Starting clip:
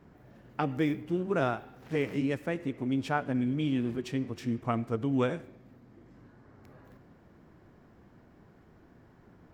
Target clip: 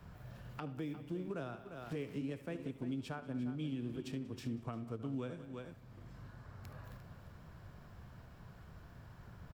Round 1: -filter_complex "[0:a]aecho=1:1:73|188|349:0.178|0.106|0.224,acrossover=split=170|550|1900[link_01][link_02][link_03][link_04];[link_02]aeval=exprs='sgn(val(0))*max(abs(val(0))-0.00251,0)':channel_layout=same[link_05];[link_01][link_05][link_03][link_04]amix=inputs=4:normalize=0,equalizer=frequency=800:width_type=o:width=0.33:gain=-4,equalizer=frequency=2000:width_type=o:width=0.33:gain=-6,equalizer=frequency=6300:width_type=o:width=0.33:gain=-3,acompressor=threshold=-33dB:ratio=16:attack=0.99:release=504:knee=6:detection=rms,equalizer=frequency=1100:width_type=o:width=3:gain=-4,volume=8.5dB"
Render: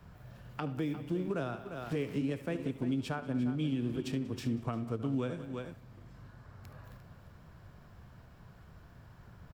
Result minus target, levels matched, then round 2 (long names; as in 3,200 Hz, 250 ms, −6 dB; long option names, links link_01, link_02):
downward compressor: peak gain reduction −7 dB
-filter_complex "[0:a]aecho=1:1:73|188|349:0.178|0.106|0.224,acrossover=split=170|550|1900[link_01][link_02][link_03][link_04];[link_02]aeval=exprs='sgn(val(0))*max(abs(val(0))-0.00251,0)':channel_layout=same[link_05];[link_01][link_05][link_03][link_04]amix=inputs=4:normalize=0,equalizer=frequency=800:width_type=o:width=0.33:gain=-4,equalizer=frequency=2000:width_type=o:width=0.33:gain=-6,equalizer=frequency=6300:width_type=o:width=0.33:gain=-3,acompressor=threshold=-40.5dB:ratio=16:attack=0.99:release=504:knee=6:detection=rms,equalizer=frequency=1100:width_type=o:width=3:gain=-4,volume=8.5dB"